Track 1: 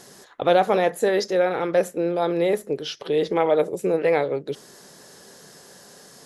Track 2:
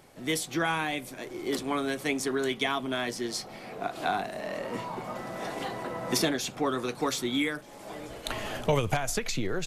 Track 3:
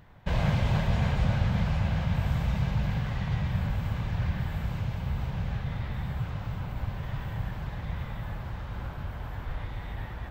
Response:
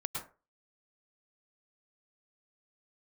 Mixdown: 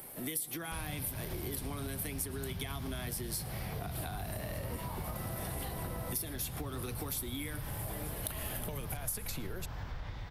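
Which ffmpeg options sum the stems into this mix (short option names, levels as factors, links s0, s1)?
-filter_complex "[1:a]acompressor=threshold=0.0251:ratio=6,aexciter=amount=9.5:drive=6.6:freq=9500,volume=1.06,asplit=2[s0][s1];[s1]volume=0.178[s2];[2:a]dynaudnorm=f=120:g=13:m=2.82,equalizer=f=5300:w=1.5:g=11.5,acompressor=threshold=0.0794:ratio=6,adelay=450,volume=0.316[s3];[3:a]atrim=start_sample=2205[s4];[s2][s4]afir=irnorm=-1:irlink=0[s5];[s0][s3][s5]amix=inputs=3:normalize=0,acrossover=split=260|3000[s6][s7][s8];[s7]acompressor=threshold=0.0126:ratio=2.5[s9];[s6][s9][s8]amix=inputs=3:normalize=0,asoftclip=type=tanh:threshold=0.266,acompressor=threshold=0.0141:ratio=3"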